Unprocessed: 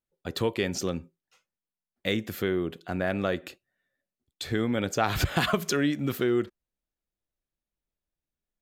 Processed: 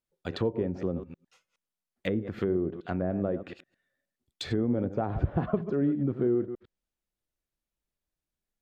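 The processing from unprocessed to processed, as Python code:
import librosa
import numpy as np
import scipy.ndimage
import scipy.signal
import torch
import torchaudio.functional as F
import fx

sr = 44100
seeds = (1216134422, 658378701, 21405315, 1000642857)

y = fx.reverse_delay(x, sr, ms=104, wet_db=-11.0)
y = fx.env_lowpass_down(y, sr, base_hz=590.0, full_db=-25.0)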